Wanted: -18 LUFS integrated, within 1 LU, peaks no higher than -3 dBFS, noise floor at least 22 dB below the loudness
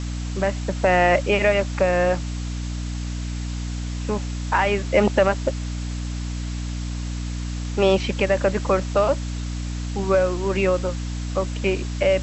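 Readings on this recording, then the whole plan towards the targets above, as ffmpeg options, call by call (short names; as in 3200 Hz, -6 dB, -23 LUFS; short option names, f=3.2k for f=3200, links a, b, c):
hum 60 Hz; harmonics up to 300 Hz; hum level -25 dBFS; noise floor -28 dBFS; noise floor target -45 dBFS; loudness -23.0 LUFS; peak -5.0 dBFS; loudness target -18.0 LUFS
-> -af "bandreject=f=60:t=h:w=6,bandreject=f=120:t=h:w=6,bandreject=f=180:t=h:w=6,bandreject=f=240:t=h:w=6,bandreject=f=300:t=h:w=6"
-af "afftdn=nr=17:nf=-28"
-af "volume=5dB,alimiter=limit=-3dB:level=0:latency=1"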